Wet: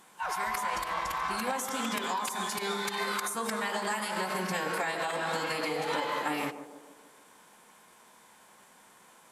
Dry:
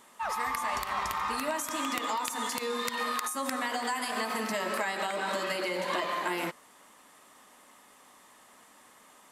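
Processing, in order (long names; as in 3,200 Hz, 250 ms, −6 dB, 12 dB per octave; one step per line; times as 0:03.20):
phase-vocoder pitch shift with formants kept −3 semitones
on a send: feedback echo with a band-pass in the loop 149 ms, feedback 59%, band-pass 440 Hz, level −9 dB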